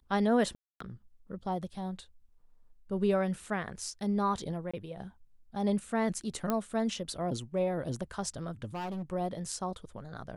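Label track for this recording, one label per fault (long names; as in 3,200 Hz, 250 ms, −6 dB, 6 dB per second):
0.550000	0.800000	drop-out 254 ms
4.710000	4.740000	drop-out 25 ms
6.500000	6.500000	click −16 dBFS
8.740000	9.030000	clipping −34 dBFS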